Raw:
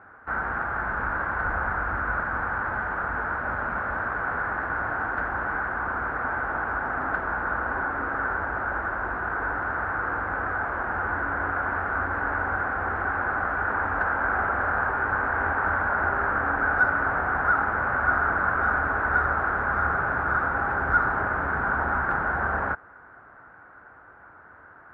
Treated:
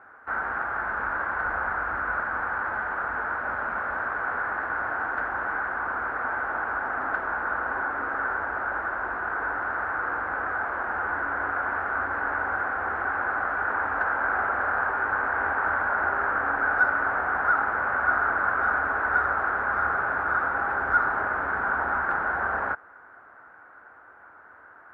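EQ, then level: peaking EQ 150 Hz -3.5 dB 0.8 oct; bass shelf 210 Hz -11.5 dB; 0.0 dB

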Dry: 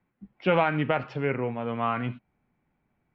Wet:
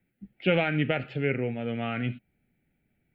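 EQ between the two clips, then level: treble shelf 4.4 kHz +8 dB; static phaser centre 2.5 kHz, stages 4; +1.5 dB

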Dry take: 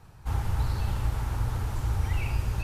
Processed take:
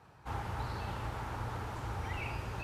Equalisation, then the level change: high-pass 380 Hz 6 dB/octave; low-pass 2.2 kHz 6 dB/octave; +1.0 dB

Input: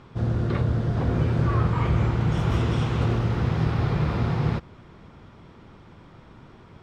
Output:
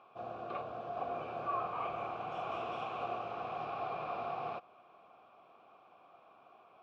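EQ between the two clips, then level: vowel filter a; bass shelf 210 Hz -11.5 dB; +4.0 dB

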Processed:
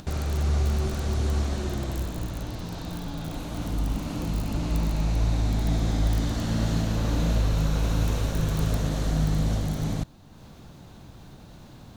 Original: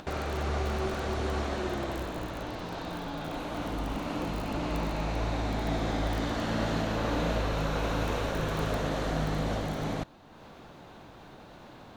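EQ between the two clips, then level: tone controls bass +14 dB, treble +13 dB; -4.5 dB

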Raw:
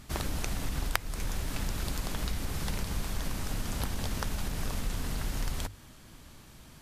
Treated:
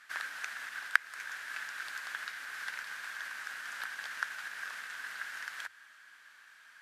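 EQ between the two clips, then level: band-pass filter 1.6 kHz, Q 6.6; tilt EQ +4 dB/octave; +9.0 dB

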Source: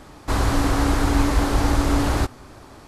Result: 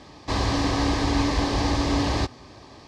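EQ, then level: high-pass 61 Hz; Butterworth band-stop 1.4 kHz, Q 5.1; resonant low-pass 5 kHz, resonance Q 1.9; -2.0 dB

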